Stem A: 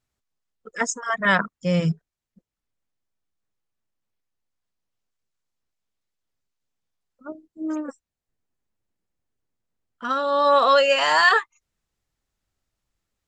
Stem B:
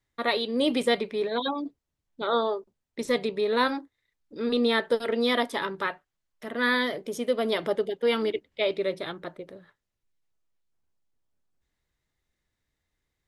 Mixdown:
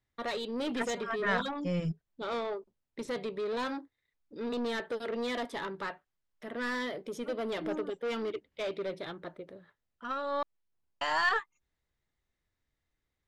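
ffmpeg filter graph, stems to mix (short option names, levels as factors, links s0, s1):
-filter_complex "[0:a]aeval=exprs='0.562*(cos(1*acos(clip(val(0)/0.562,-1,1)))-cos(1*PI/2))+0.0224*(cos(6*acos(clip(val(0)/0.562,-1,1)))-cos(6*PI/2))':c=same,volume=0.282,asplit=3[s0][s1][s2];[s0]atrim=end=10.43,asetpts=PTS-STARTPTS,afade=t=out:st=10.426:d=0.004:c=hsin[s3];[s1]atrim=start=10.43:end=11.01,asetpts=PTS-STARTPTS,volume=0[s4];[s2]atrim=start=11.01,asetpts=PTS-STARTPTS,afade=t=in:d=0.004:c=hsin[s5];[s3][s4][s5]concat=n=3:v=0:a=1[s6];[1:a]asoftclip=type=tanh:threshold=0.0501,volume=0.631[s7];[s6][s7]amix=inputs=2:normalize=0,highshelf=f=7000:g=-10"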